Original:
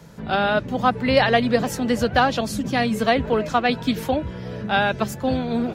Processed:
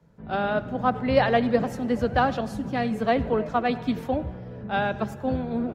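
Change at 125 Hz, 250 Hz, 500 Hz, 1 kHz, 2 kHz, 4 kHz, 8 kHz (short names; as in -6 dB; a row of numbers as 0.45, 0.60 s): -3.5 dB, -3.5 dB, -3.0 dB, -4.0 dB, -7.0 dB, -10.5 dB, under -15 dB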